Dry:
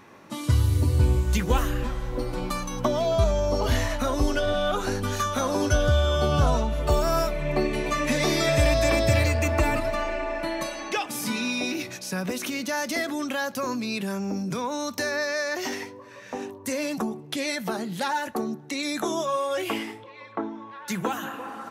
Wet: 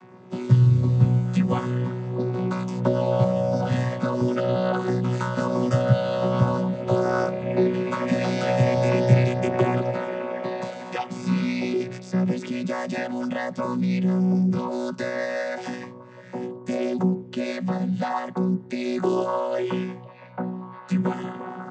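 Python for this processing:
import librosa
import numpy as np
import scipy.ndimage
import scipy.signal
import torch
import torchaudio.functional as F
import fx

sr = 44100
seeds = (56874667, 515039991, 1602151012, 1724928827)

y = fx.chord_vocoder(x, sr, chord='bare fifth', root=47)
y = y * librosa.db_to_amplitude(4.5)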